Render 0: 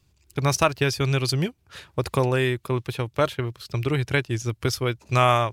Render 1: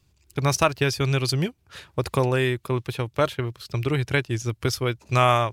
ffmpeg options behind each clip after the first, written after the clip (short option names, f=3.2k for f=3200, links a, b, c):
-af anull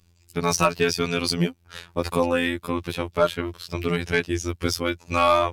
-af "afftfilt=real='hypot(re,im)*cos(PI*b)':imag='0':win_size=2048:overlap=0.75,aeval=exprs='0.668*(cos(1*acos(clip(val(0)/0.668,-1,1)))-cos(1*PI/2))+0.075*(cos(5*acos(clip(val(0)/0.668,-1,1)))-cos(5*PI/2))':c=same,volume=2dB"